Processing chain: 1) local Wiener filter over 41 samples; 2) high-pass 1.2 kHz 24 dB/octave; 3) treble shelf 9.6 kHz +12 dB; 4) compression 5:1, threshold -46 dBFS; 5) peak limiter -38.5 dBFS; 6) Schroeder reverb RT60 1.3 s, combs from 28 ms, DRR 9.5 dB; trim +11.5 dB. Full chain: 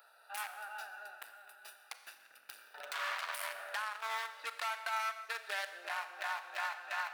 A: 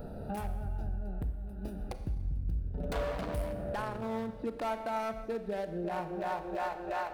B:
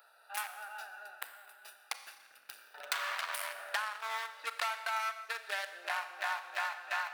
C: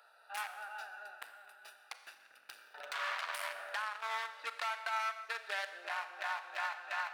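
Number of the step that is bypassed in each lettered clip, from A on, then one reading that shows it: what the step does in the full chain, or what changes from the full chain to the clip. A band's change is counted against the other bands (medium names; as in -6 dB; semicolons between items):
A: 2, 500 Hz band +22.5 dB; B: 5, crest factor change +7.5 dB; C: 3, 8 kHz band -3.5 dB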